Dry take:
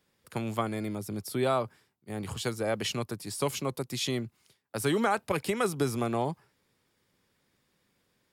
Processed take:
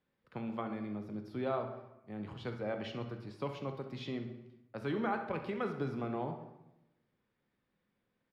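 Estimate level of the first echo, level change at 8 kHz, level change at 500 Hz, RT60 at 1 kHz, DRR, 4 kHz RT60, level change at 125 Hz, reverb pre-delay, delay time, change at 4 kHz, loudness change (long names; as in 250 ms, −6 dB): −13.0 dB, below −30 dB, −7.5 dB, 0.90 s, 5.0 dB, 0.65 s, −7.5 dB, 3 ms, 66 ms, −15.0 dB, −8.0 dB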